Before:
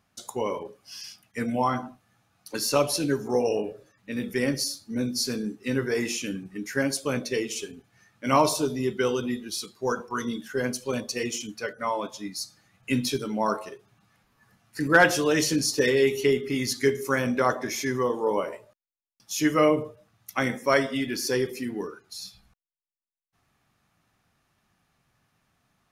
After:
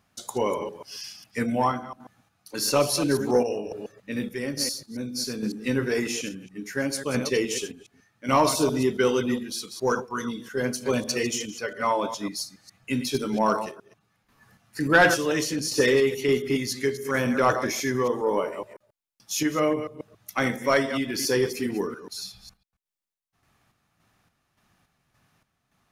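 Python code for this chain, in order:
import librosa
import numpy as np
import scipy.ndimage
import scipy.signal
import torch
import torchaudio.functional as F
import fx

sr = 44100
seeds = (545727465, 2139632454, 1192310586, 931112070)

y = fx.reverse_delay(x, sr, ms=138, wet_db=-11)
y = fx.tremolo_random(y, sr, seeds[0], hz=3.5, depth_pct=70)
y = 10.0 ** (-13.5 / 20.0) * np.tanh(y / 10.0 ** (-13.5 / 20.0))
y = F.gain(torch.from_numpy(y), 4.5).numpy()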